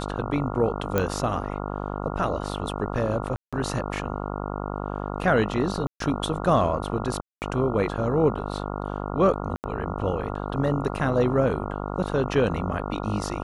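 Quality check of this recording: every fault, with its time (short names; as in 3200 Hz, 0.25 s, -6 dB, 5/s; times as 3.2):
buzz 50 Hz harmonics 28 -31 dBFS
0.98 pop -9 dBFS
3.36–3.53 gap 0.166 s
5.87–6 gap 0.133 s
7.21–7.42 gap 0.209 s
9.56–9.64 gap 79 ms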